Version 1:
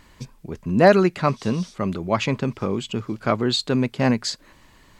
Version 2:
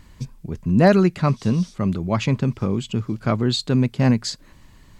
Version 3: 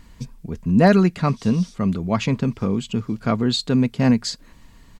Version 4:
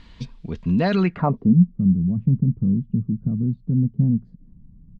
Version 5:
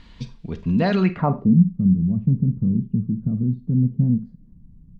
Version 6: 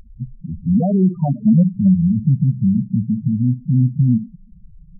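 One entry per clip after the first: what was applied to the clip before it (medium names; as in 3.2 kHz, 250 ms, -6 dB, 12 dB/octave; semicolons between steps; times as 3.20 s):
tone controls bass +10 dB, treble +3 dB; trim -3 dB
comb 4.3 ms, depth 31%
peak limiter -12.5 dBFS, peak gain reduction 9 dB; low-pass sweep 3.7 kHz -> 170 Hz, 0.99–1.56 s
Schroeder reverb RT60 0.3 s, combs from 32 ms, DRR 11.5 dB
reverse echo 32 ms -18.5 dB; sine folder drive 4 dB, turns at -5.5 dBFS; loudest bins only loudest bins 4; trim -2 dB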